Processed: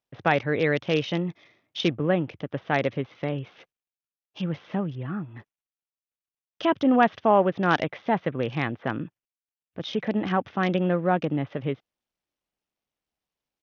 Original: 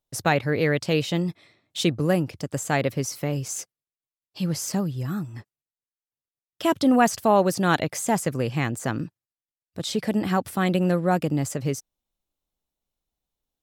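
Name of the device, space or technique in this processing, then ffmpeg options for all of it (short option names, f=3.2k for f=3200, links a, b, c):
Bluetooth headset: -af "highpass=f=180:p=1,aresample=8000,aresample=44100" -ar 48000 -c:a sbc -b:a 64k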